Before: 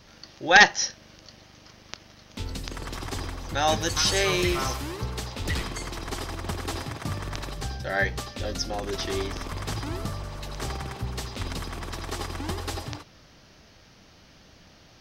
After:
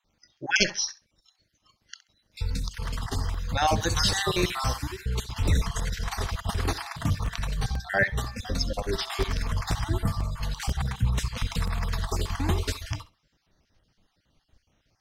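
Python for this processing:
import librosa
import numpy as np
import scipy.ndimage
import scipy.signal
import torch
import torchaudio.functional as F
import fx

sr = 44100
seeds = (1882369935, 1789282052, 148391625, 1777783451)

p1 = fx.spec_dropout(x, sr, seeds[0], share_pct=36)
p2 = fx.noise_reduce_blind(p1, sr, reduce_db=20)
p3 = fx.rider(p2, sr, range_db=5, speed_s=2.0)
p4 = p2 + (p3 * 10.0 ** (-1.5 / 20.0))
p5 = fx.low_shelf(p4, sr, hz=140.0, db=7.0)
p6 = p5 + fx.echo_feedback(p5, sr, ms=66, feedback_pct=18, wet_db=-17.5, dry=0)
p7 = fx.buffer_crackle(p6, sr, first_s=0.4, period_s=0.49, block=128, kind='repeat')
y = p7 * 10.0 ** (-4.5 / 20.0)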